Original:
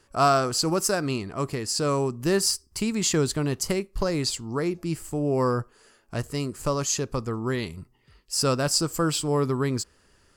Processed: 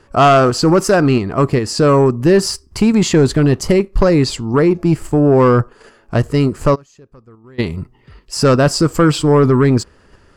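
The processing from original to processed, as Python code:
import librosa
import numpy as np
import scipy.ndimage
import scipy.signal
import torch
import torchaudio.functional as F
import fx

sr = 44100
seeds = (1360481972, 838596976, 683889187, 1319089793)

p1 = fx.lowpass(x, sr, hz=1700.0, slope=6)
p2 = fx.level_steps(p1, sr, step_db=15)
p3 = p1 + F.gain(torch.from_numpy(p2), 1.0).numpy()
p4 = fx.fold_sine(p3, sr, drive_db=4, ceiling_db=-8.0)
p5 = fx.gate_flip(p4, sr, shuts_db=-19.0, range_db=-29, at=(6.74, 7.58), fade=0.02)
y = F.gain(torch.from_numpy(p5), 3.5).numpy()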